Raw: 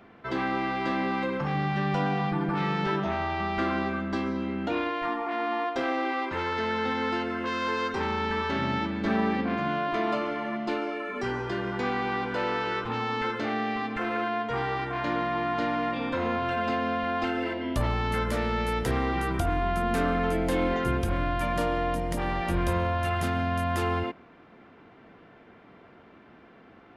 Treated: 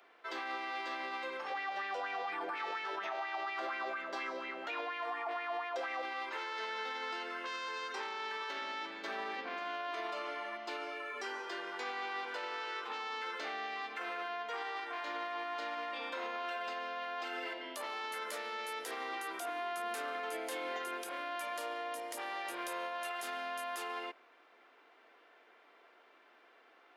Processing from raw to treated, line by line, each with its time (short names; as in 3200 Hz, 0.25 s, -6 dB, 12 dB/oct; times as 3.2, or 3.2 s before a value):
1.5–6.02 LFO bell 4.2 Hz 490–2400 Hz +12 dB
whole clip: Bessel high-pass 560 Hz, order 6; high shelf 3400 Hz +9 dB; limiter -23 dBFS; gain -7.5 dB